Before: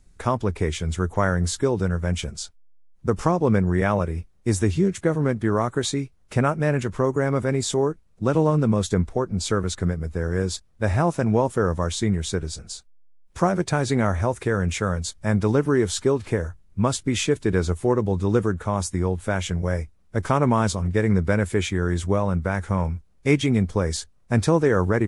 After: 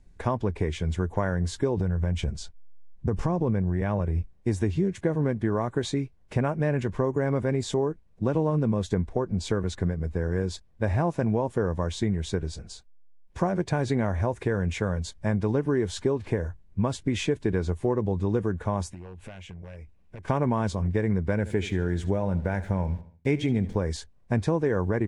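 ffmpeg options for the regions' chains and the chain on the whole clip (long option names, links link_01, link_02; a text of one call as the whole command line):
ffmpeg -i in.wav -filter_complex "[0:a]asettb=1/sr,asplit=3[link_01][link_02][link_03];[link_01]atrim=end=1.774[link_04];[link_02]atrim=start=1.77:end=4.33,asetpts=PTS-STARTPTS,afade=type=in:duration=0.004:curve=qsin,afade=type=out:start_time=2.556:duration=0.004:curve=qsin,lowshelf=frequency=170:gain=8,acompressor=threshold=-19dB:ratio=3:attack=3.2:release=140:knee=1:detection=peak[link_05];[link_03]atrim=start=4.326[link_06];[link_04][link_05]acrossfade=duration=0.004:curve1=hsin:curve2=qsin[link_07];[link_07][link_06]acrossfade=duration=0.004:curve1=qsin:curve2=hsin,asettb=1/sr,asplit=3[link_08][link_09][link_10];[link_08]atrim=end=18.904[link_11];[link_09]atrim=start=18.9:end=20.28,asetpts=PTS-STARTPTS,afade=type=in:duration=0.004:curve=qsin,afade=type=out:start_time=1.376:duration=0.004:curve=qsin,aeval=exprs='0.168*(abs(mod(val(0)/0.168+3,4)-2)-1)':channel_layout=same,equalizer=frequency=2600:width_type=o:width=0.4:gain=7,acompressor=threshold=-37dB:ratio=12:attack=3.2:release=140:knee=1:detection=peak[link_12];[link_10]atrim=start=20.276[link_13];[link_11][link_12]acrossfade=duration=0.004:curve1=hsin:curve2=qsin[link_14];[link_14][link_13]acrossfade=duration=0.004:curve1=qsin:curve2=hsin,asettb=1/sr,asplit=3[link_15][link_16][link_17];[link_15]atrim=end=21.364[link_18];[link_16]atrim=start=21.36:end=23.76,asetpts=PTS-STARTPTS,afade=type=in:duration=0.004:curve=qsin,afade=type=out:start_time=2.396:duration=0.004:curve=qsin,bandreject=frequency=1100:width=5.1,aeval=exprs='val(0)*gte(abs(val(0)),0.00531)':channel_layout=same,aecho=1:1:75|150|225|300:0.141|0.0593|0.0249|0.0105,atrim=end_sample=105840[link_19];[link_17]atrim=start=23.756[link_20];[link_18][link_19]acrossfade=duration=0.004:curve1=hsin:curve2=qsin[link_21];[link_21][link_20]acrossfade=duration=0.004:curve1=qsin:curve2=hsin,lowpass=frequency=2300:poles=1,bandreject=frequency=1300:width=5.7,acompressor=threshold=-22dB:ratio=3" out.wav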